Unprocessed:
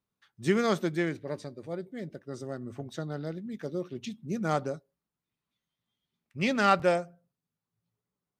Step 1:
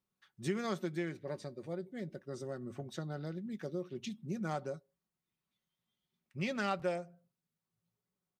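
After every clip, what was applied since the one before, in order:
comb filter 5.4 ms, depth 36%
downward compressor 2 to 1, threshold −35 dBFS, peak gain reduction 10 dB
level −3 dB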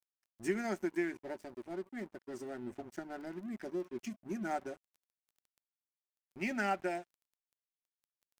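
phaser with its sweep stopped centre 750 Hz, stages 8
surface crackle 14 per second −54 dBFS
dead-zone distortion −57.5 dBFS
level +5 dB

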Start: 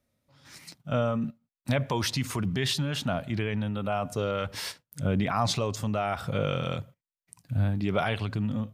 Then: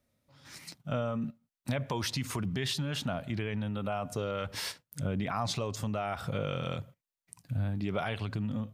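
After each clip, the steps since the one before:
downward compressor 2 to 1, threshold −33 dBFS, peak gain reduction 7 dB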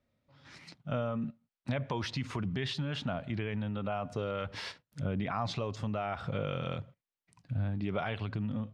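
low-pass filter 3,800 Hz 12 dB per octave
level −1 dB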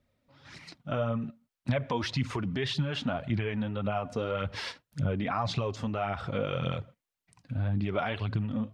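flanger 1.8 Hz, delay 0.2 ms, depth 4.2 ms, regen +32%
level +7.5 dB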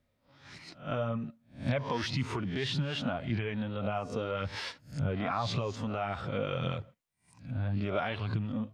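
peak hold with a rise ahead of every peak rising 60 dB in 0.35 s
level −3 dB

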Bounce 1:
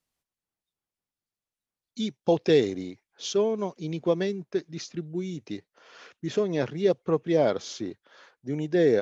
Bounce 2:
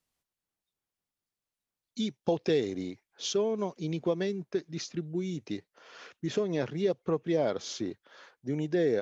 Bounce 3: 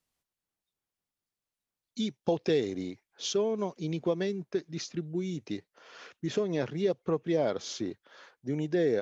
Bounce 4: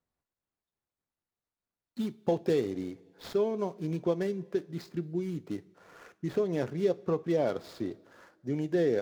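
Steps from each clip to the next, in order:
downward compressor 2 to 1, threshold −28 dBFS, peak gain reduction 7.5 dB
no processing that can be heard
running median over 15 samples; coupled-rooms reverb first 0.25 s, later 1.9 s, from −18 dB, DRR 13.5 dB

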